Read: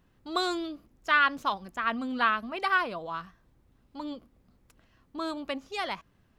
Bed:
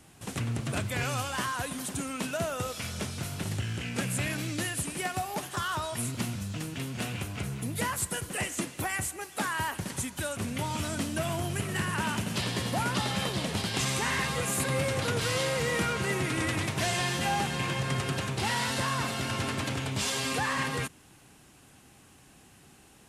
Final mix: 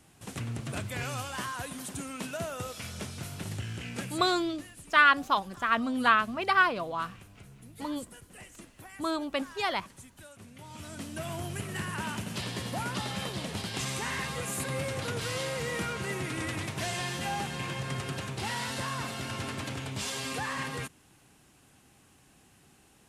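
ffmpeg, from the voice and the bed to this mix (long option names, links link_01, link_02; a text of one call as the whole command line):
ffmpeg -i stem1.wav -i stem2.wav -filter_complex "[0:a]adelay=3850,volume=2.5dB[link_01];[1:a]volume=8.5dB,afade=type=out:start_time=3.93:duration=0.39:silence=0.223872,afade=type=in:start_time=10.59:duration=0.81:silence=0.237137[link_02];[link_01][link_02]amix=inputs=2:normalize=0" out.wav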